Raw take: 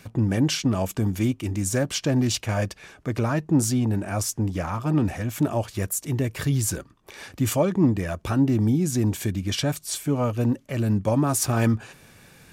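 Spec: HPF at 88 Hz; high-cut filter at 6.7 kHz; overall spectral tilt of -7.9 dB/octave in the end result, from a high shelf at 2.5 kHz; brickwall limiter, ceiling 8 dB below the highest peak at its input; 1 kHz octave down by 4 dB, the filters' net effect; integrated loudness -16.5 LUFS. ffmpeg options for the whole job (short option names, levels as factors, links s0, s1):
-af "highpass=88,lowpass=6700,equalizer=f=1000:t=o:g=-4,highshelf=f=2500:g=-8.5,volume=3.98,alimiter=limit=0.531:level=0:latency=1"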